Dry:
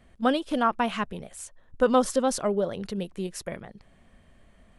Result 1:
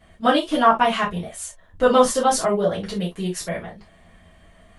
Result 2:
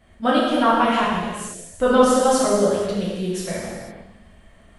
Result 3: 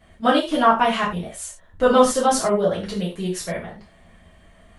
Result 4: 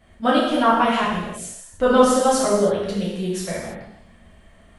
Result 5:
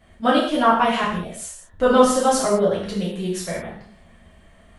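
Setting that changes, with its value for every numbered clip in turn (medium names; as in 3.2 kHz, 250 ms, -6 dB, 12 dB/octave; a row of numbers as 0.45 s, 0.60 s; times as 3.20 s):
gated-style reverb, gate: 90 ms, 530 ms, 130 ms, 360 ms, 230 ms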